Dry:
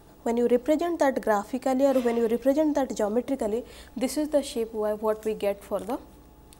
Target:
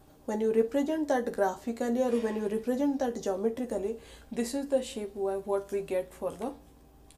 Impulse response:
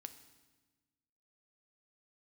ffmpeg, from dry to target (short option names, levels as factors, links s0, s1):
-filter_complex "[0:a]asetrate=40517,aresample=44100,asplit=2[s0][s1];[s1]adelay=13,volume=0.473[s2];[s0][s2]amix=inputs=2:normalize=0[s3];[1:a]atrim=start_sample=2205,atrim=end_sample=3087[s4];[s3][s4]afir=irnorm=-1:irlink=0"